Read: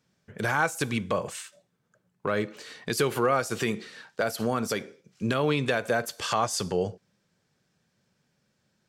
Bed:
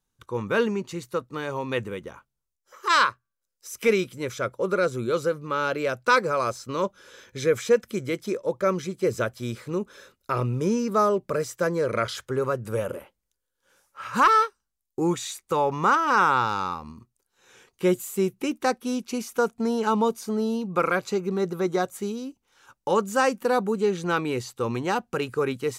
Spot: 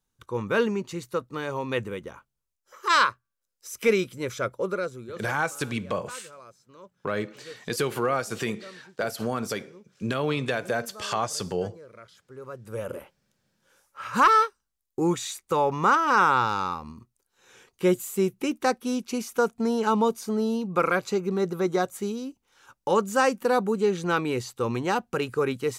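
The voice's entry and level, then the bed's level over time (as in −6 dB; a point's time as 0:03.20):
4.80 s, −1.5 dB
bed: 0:04.57 −0.5 dB
0:05.47 −22.5 dB
0:12.17 −22.5 dB
0:13.00 0 dB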